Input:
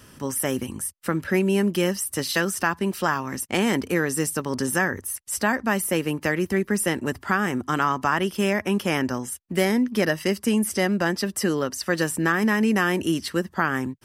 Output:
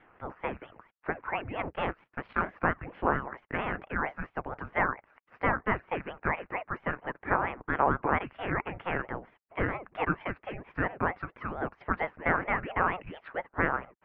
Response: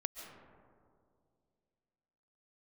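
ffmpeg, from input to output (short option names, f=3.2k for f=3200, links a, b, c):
-filter_complex "[0:a]asettb=1/sr,asplit=3[a][b][c];[a]atrim=end=1.594[d];[b]atrim=start=1.59:end=2.5,asetpts=PTS-STARTPTS,afade=t=in:d=0.004:c=qsin,afade=t=out:st=0.906:d=0.004:c=qsin,aeval=exprs='0.422*(cos(1*acos(clip(val(0)/0.422,-1,1)))-cos(1*PI/2))+0.0841*(cos(5*acos(clip(val(0)/0.422,-1,1)))-cos(5*PI/2))+0.106*(cos(7*acos(clip(val(0)/0.422,-1,1)))-cos(7*PI/2))':c=same[e];[c]atrim=start=2.496[f];[d][e]acrossfade=d=0.004:c1=hsin:c2=qsin[g];[g][f]acrossfade=d=0.004:c1=qsin:c2=hsin,highpass=f=540:t=q:w=0.5412,highpass=f=540:t=q:w=1.307,lowpass=f=2.3k:t=q:w=0.5176,lowpass=f=2.3k:t=q:w=0.7071,lowpass=f=2.3k:t=q:w=1.932,afreqshift=-370,aeval=exprs='val(0)*sin(2*PI*400*n/s+400*0.85/4.4*sin(2*PI*4.4*n/s))':c=same"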